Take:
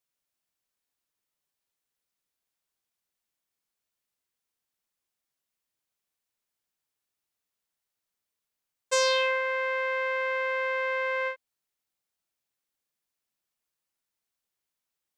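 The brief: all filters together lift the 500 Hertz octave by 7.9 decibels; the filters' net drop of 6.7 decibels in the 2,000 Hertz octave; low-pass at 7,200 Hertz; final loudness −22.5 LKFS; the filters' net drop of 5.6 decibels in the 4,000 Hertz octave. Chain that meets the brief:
low-pass filter 7,200 Hz
parametric band 500 Hz +8.5 dB
parametric band 2,000 Hz −8.5 dB
parametric band 4,000 Hz −4 dB
level +1.5 dB

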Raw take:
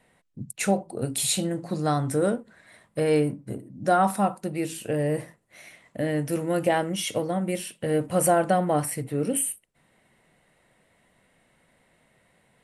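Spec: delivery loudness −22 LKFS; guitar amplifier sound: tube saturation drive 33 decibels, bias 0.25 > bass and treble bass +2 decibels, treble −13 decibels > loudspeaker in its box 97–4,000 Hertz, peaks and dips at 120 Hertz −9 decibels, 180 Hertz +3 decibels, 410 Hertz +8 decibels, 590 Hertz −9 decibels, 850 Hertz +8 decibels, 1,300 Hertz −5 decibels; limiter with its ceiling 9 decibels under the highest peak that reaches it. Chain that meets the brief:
brickwall limiter −18.5 dBFS
tube saturation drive 33 dB, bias 0.25
bass and treble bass +2 dB, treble −13 dB
loudspeaker in its box 97–4,000 Hz, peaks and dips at 120 Hz −9 dB, 180 Hz +3 dB, 410 Hz +8 dB, 590 Hz −9 dB, 850 Hz +8 dB, 1,300 Hz −5 dB
level +14.5 dB

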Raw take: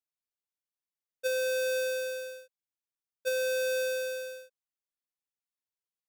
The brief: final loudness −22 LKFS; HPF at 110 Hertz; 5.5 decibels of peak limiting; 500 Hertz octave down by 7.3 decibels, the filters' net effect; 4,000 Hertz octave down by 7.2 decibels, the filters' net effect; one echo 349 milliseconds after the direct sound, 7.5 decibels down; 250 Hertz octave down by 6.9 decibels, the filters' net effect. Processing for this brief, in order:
high-pass filter 110 Hz
parametric band 250 Hz −7 dB
parametric band 500 Hz −6 dB
parametric band 4,000 Hz −8.5 dB
brickwall limiter −29.5 dBFS
single-tap delay 349 ms −7.5 dB
level +16.5 dB

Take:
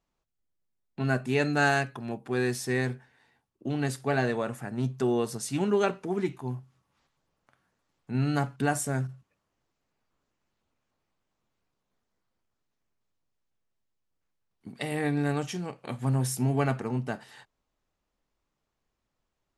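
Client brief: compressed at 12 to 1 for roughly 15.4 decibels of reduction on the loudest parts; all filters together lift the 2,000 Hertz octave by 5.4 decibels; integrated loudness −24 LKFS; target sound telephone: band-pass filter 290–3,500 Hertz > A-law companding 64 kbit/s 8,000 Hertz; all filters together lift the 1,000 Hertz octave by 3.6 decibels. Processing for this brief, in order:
parametric band 1,000 Hz +4 dB
parametric band 2,000 Hz +6 dB
downward compressor 12 to 1, threshold −31 dBFS
band-pass filter 290–3,500 Hz
level +15.5 dB
A-law companding 64 kbit/s 8,000 Hz

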